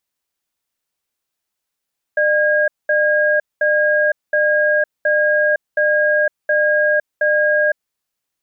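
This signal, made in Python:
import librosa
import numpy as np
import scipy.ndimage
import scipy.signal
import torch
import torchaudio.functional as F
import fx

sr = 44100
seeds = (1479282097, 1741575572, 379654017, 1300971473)

y = fx.cadence(sr, length_s=5.58, low_hz=602.0, high_hz=1630.0, on_s=0.51, off_s=0.21, level_db=-15.0)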